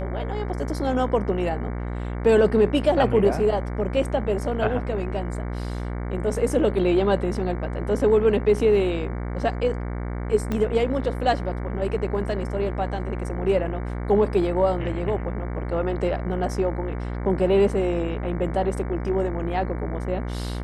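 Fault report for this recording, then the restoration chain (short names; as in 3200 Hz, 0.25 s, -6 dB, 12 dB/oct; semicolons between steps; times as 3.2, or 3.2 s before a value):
buzz 60 Hz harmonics 38 -29 dBFS
10.52 pop -14 dBFS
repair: de-click; de-hum 60 Hz, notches 38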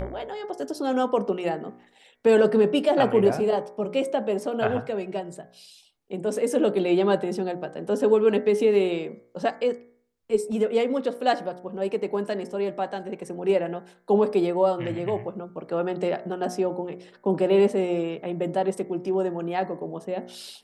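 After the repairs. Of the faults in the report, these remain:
10.52 pop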